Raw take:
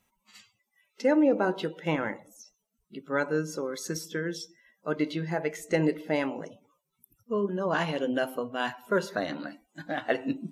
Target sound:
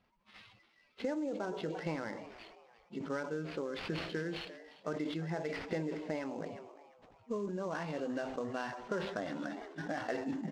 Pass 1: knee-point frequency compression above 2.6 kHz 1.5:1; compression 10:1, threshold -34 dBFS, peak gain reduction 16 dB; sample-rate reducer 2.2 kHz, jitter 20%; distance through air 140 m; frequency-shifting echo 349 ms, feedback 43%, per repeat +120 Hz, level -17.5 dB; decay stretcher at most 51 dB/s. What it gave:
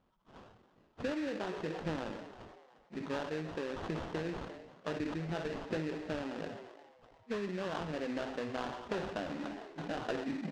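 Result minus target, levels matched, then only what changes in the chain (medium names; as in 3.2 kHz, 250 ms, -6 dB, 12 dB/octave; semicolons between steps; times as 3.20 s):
sample-rate reducer: distortion +8 dB
change: sample-rate reducer 7.2 kHz, jitter 20%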